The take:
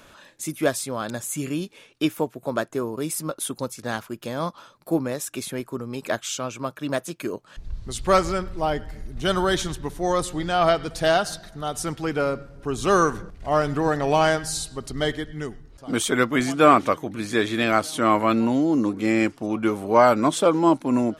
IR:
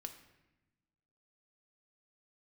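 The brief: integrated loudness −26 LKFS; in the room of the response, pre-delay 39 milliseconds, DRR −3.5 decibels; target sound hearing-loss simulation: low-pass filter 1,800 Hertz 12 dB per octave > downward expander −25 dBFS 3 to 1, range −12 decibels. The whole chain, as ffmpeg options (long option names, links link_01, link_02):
-filter_complex "[0:a]asplit=2[link_01][link_02];[1:a]atrim=start_sample=2205,adelay=39[link_03];[link_02][link_03]afir=irnorm=-1:irlink=0,volume=7.5dB[link_04];[link_01][link_04]amix=inputs=2:normalize=0,lowpass=1800,agate=range=-12dB:threshold=-25dB:ratio=3,volume=-7dB"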